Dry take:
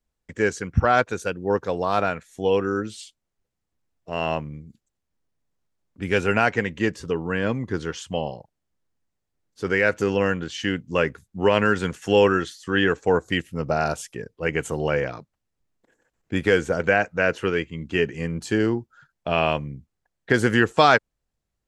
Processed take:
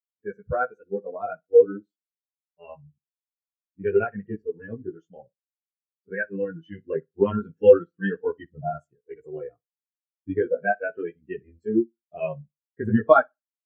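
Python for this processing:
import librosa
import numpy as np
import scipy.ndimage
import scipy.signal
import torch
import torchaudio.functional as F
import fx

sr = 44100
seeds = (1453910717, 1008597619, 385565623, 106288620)

y = fx.chorus_voices(x, sr, voices=2, hz=0.22, base_ms=17, depth_ms=3.2, mix_pct=45)
y = fx.stretch_grains(y, sr, factor=0.63, grain_ms=155.0)
y = fx.echo_feedback(y, sr, ms=61, feedback_pct=39, wet_db=-15.0)
y = fx.spectral_expand(y, sr, expansion=2.5)
y = F.gain(torch.from_numpy(y), 5.0).numpy()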